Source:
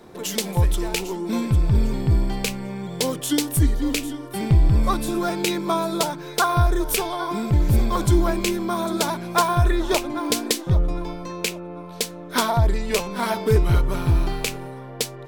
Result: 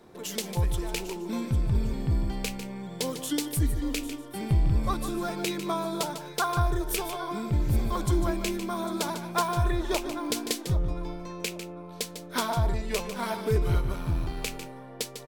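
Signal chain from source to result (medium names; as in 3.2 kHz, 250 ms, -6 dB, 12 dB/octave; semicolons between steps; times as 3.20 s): 13.92–14.37 s: AM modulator 82 Hz, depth 35%; on a send: delay 149 ms -10 dB; on the sum: trim -7.5 dB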